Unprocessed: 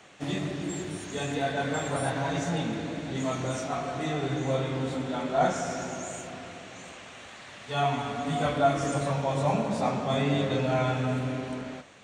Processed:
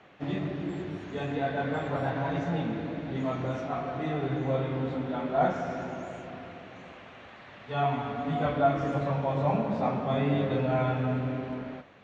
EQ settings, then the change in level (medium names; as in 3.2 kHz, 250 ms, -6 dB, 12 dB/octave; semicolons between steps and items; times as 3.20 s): low-pass 2.7 kHz 6 dB/octave; distance through air 170 m; 0.0 dB